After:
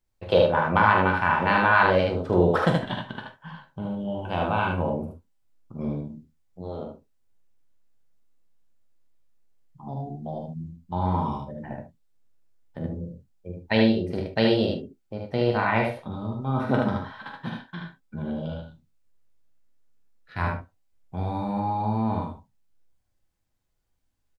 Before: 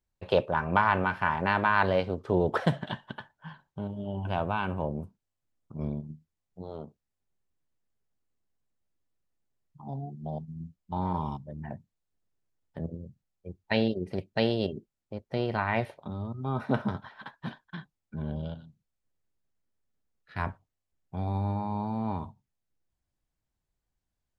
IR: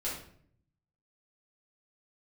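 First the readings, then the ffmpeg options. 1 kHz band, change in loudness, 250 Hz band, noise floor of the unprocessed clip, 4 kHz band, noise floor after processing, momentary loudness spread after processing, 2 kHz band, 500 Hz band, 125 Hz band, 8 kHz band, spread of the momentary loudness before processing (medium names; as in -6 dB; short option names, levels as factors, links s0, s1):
+5.5 dB, +6.0 dB, +6.0 dB, -85 dBFS, +6.0 dB, -72 dBFS, 19 LU, +6.5 dB, +6.0 dB, +4.0 dB, no reading, 19 LU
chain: -filter_complex "[0:a]aecho=1:1:45|75:0.376|0.668,asplit=2[s0][s1];[1:a]atrim=start_sample=2205,atrim=end_sample=3528[s2];[s1][s2]afir=irnorm=-1:irlink=0,volume=0.631[s3];[s0][s3]amix=inputs=2:normalize=0"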